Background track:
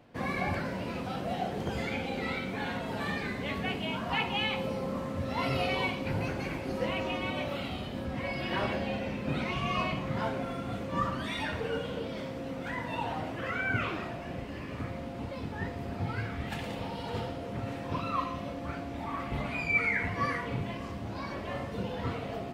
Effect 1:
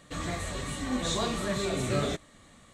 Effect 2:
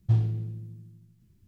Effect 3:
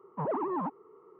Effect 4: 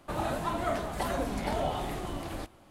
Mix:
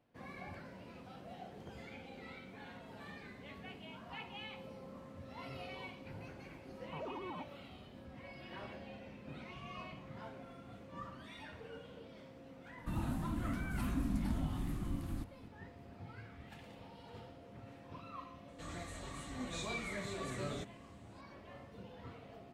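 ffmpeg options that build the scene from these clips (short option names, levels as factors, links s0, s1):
-filter_complex "[0:a]volume=0.141[s0];[4:a]firequalizer=gain_entry='entry(270,0);entry(470,-27);entry(1100,-12);entry(2200,-15);entry(12000,-8)':delay=0.05:min_phase=1[s1];[3:a]atrim=end=1.19,asetpts=PTS-STARTPTS,volume=0.211,afade=t=in:d=0.004:c=hsin,afade=t=out:st=1.186:d=0.004:c=hsin,adelay=297234S[s2];[s1]atrim=end=2.7,asetpts=PTS-STARTPTS,afade=t=in:d=0.004:c=hsin,afade=t=out:st=2.696:d=0.004:c=hsin,adelay=12780[s3];[1:a]atrim=end=2.73,asetpts=PTS-STARTPTS,volume=0.224,afade=t=in:d=0.004:c=hsin,afade=t=out:st=2.726:d=0.004:c=hsin,adelay=18480[s4];[s0][s2][s3][s4]amix=inputs=4:normalize=0"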